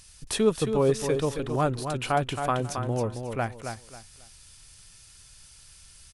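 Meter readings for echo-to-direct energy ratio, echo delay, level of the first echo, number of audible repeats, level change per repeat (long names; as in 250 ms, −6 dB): −6.5 dB, 271 ms, −7.0 dB, 3, −11.5 dB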